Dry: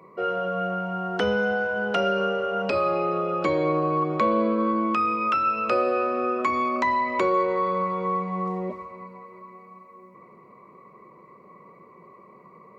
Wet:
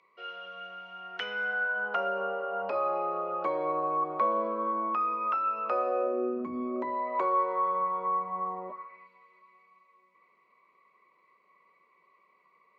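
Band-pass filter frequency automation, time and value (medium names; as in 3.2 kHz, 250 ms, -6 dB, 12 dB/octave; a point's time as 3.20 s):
band-pass filter, Q 2
0.90 s 3.3 kHz
2.16 s 870 Hz
5.85 s 870 Hz
6.49 s 200 Hz
7.25 s 930 Hz
8.66 s 930 Hz
9.09 s 3.2 kHz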